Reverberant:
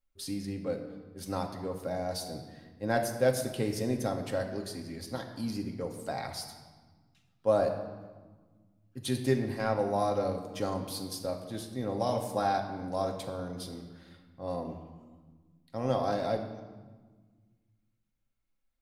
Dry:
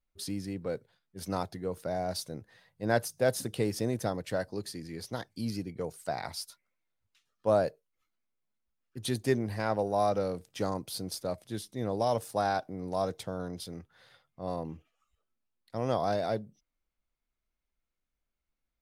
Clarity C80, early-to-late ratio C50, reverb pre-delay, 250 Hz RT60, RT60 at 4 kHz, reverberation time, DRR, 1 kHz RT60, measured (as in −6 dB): 9.0 dB, 7.5 dB, 4 ms, 2.3 s, 1.0 s, 1.4 s, 3.0 dB, 1.4 s